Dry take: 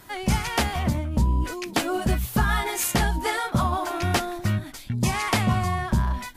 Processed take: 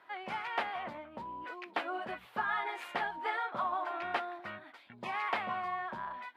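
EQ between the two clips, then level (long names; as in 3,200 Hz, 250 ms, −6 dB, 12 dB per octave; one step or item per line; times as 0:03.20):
high-pass filter 700 Hz 12 dB per octave
high-frequency loss of the air 490 metres
high-shelf EQ 11,000 Hz −5.5 dB
−3.5 dB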